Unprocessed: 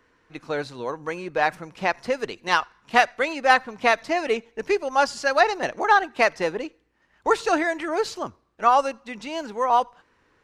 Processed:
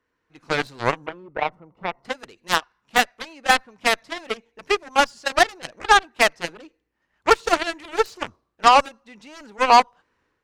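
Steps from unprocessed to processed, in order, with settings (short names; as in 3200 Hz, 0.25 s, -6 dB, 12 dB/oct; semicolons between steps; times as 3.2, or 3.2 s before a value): AGC gain up to 15 dB; 1.06–2.05 polynomial smoothing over 65 samples; added harmonics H 7 -15 dB, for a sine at -0.5 dBFS; gain -1.5 dB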